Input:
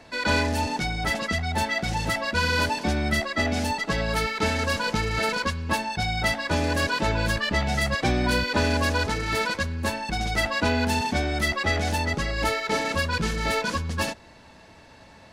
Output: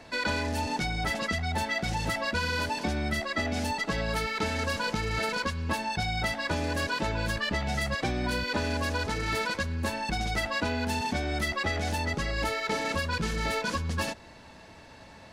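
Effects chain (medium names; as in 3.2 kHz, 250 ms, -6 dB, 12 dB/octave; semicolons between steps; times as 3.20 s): compression, threshold -26 dBFS, peak gain reduction 8.5 dB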